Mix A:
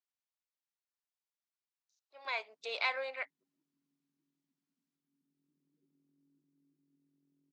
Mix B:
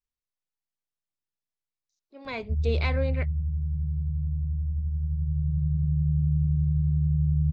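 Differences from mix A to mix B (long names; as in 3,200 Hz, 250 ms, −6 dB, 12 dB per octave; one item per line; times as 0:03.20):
speech: remove high-pass filter 690 Hz 24 dB per octave
background: remove Chebyshev high-pass with heavy ripple 270 Hz, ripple 6 dB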